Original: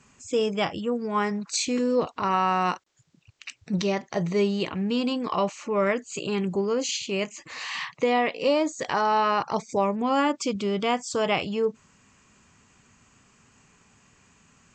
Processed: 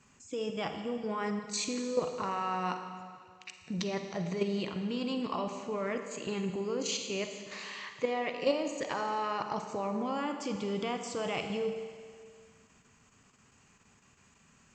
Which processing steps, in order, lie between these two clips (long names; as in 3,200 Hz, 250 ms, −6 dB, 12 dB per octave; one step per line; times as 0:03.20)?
output level in coarse steps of 10 dB
four-comb reverb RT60 2 s, DRR 6 dB
level −4 dB